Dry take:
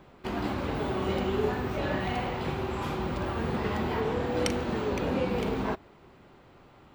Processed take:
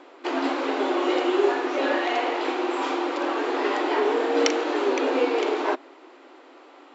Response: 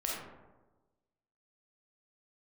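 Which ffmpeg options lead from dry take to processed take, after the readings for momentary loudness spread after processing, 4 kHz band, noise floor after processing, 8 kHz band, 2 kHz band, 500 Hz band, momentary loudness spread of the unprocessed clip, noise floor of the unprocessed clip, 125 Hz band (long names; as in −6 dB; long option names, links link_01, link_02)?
4 LU, +8.0 dB, −50 dBFS, +6.5 dB, +8.0 dB, +7.5 dB, 4 LU, −56 dBFS, below −35 dB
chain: -af "afftfilt=real='re*between(b*sr/4096,270,7700)':imag='im*between(b*sr/4096,270,7700)':win_size=4096:overlap=0.75,afreqshift=-23,volume=8dB"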